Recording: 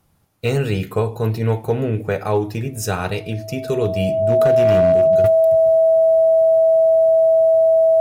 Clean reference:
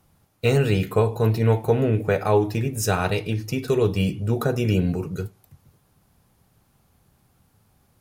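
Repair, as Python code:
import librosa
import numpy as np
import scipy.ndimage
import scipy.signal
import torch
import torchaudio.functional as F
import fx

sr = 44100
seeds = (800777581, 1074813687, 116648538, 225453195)

y = fx.fix_declip(x, sr, threshold_db=-9.0)
y = fx.notch(y, sr, hz=650.0, q=30.0)
y = fx.fix_level(y, sr, at_s=5.24, step_db=-11.0)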